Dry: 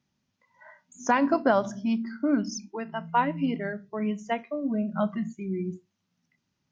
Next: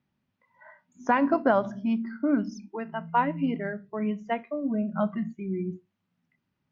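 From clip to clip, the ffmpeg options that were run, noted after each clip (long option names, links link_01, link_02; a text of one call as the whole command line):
ffmpeg -i in.wav -af "lowpass=2700" out.wav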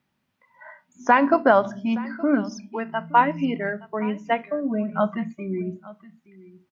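ffmpeg -i in.wav -af "lowshelf=frequency=340:gain=-8.5,aecho=1:1:870:0.1,volume=8dB" out.wav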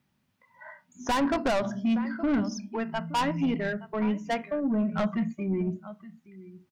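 ffmpeg -i in.wav -af "asoftclip=type=tanh:threshold=-21dB,bass=frequency=250:gain=6,treble=frequency=4000:gain=4,volume=-2dB" out.wav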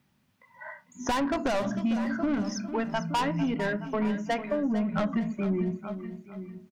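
ffmpeg -i in.wav -af "acompressor=threshold=-29dB:ratio=6,aecho=1:1:451|902|1353|1804:0.251|0.1|0.0402|0.0161,volume=4dB" out.wav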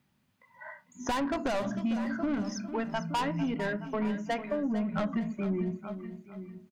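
ffmpeg -i in.wav -af "bandreject=frequency=5600:width=22,volume=-3dB" out.wav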